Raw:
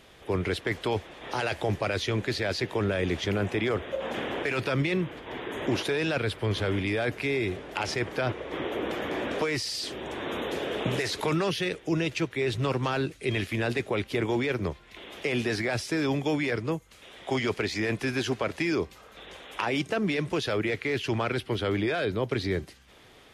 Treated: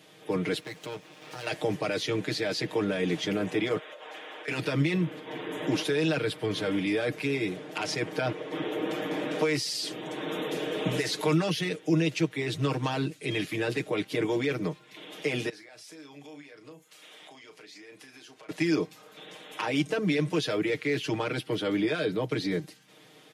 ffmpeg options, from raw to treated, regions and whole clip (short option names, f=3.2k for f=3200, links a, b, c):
-filter_complex "[0:a]asettb=1/sr,asplit=3[a][b][c];[a]atrim=end=0.604[d];[b]atrim=start=0.6:end=1.47,asetpts=PTS-STARTPTS,afade=t=in:d=0.004:c=qsin,afade=t=out:st=0.866:d=0.004:c=qsin,equalizer=f=2.5k:t=o:w=0.22:g=5,acompressor=threshold=-38dB:ratio=1.5:attack=3.2:release=140:knee=1:detection=peak,aeval=exprs='max(val(0),0)':c=same[e];[c]atrim=start=1.466[f];[d][e]acrossfade=d=0.004:c1=hsin:c2=qsin[g];[g][f]acrossfade=d=0.004:c1=qsin:c2=hsin,asettb=1/sr,asplit=3[h][i][j];[h]atrim=end=3.784[k];[i]atrim=start=3.78:end=4.48,asetpts=PTS-STARTPTS,afade=t=in:d=0.004:c=qsin,afade=t=out:st=0.696:d=0.004:c=qsin,highpass=720,highshelf=f=6.9k:g=-6,acompressor=threshold=-38dB:ratio=4:attack=3.2:release=140:knee=1:detection=peak[l];[j]atrim=start=4.476[m];[k][l]acrossfade=d=0.004:c1=hsin:c2=qsin[n];[n][m]acrossfade=d=0.004:c1=qsin:c2=hsin,asettb=1/sr,asplit=3[o][p][q];[o]atrim=end=15.494[r];[p]atrim=start=15.49:end=18.49,asetpts=PTS-STARTPTS,afade=t=in:d=0.004:c=qsin,afade=t=out:st=2.996:d=0.004:c=qsin,highpass=f=580:p=1,acompressor=threshold=-45dB:ratio=16:attack=3.2:release=140:knee=1:detection=peak,asplit=2[s][t];[t]adelay=35,volume=-9.5dB[u];[s][u]amix=inputs=2:normalize=0,atrim=end_sample=132300[v];[q]atrim=start=18.486[w];[r][v]acrossfade=d=0.004:c1=hsin:c2=qsin[x];[x][w]acrossfade=d=0.004:c1=qsin:c2=hsin,highpass=f=140:w=0.5412,highpass=f=140:w=1.3066,equalizer=f=1.3k:w=0.44:g=-5,aecho=1:1:6.5:0.82"